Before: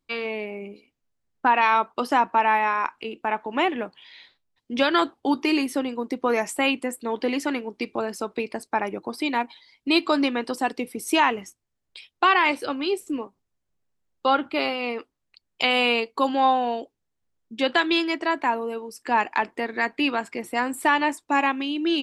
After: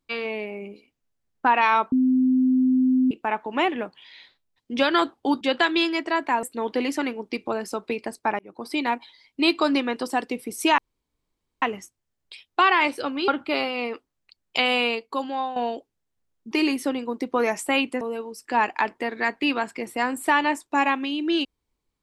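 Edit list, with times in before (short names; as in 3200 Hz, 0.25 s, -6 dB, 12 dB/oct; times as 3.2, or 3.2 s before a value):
1.92–3.11 bleep 257 Hz -16 dBFS
5.41–6.91 swap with 17.56–18.58
8.87–9.22 fade in
11.26 insert room tone 0.84 s
12.92–14.33 cut
15.63–16.61 fade out, to -11.5 dB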